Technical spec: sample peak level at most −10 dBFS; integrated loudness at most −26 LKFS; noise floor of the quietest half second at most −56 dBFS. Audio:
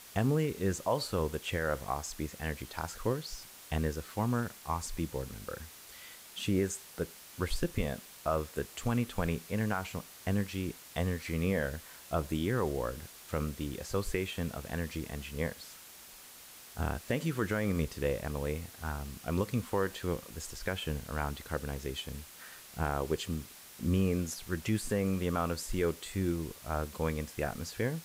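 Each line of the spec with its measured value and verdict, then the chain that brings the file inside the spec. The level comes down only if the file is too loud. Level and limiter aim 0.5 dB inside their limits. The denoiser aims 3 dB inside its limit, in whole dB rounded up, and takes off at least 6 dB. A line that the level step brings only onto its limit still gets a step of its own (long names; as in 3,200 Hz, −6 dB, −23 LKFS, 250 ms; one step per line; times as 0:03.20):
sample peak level −18.5 dBFS: in spec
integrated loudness −35.0 LKFS: in spec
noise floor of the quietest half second −52 dBFS: out of spec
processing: broadband denoise 7 dB, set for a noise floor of −52 dBFS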